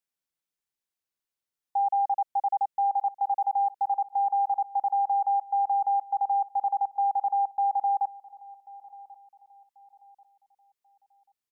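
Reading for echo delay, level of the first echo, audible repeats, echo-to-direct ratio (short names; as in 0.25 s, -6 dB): 1.088 s, -21.0 dB, 2, -20.5 dB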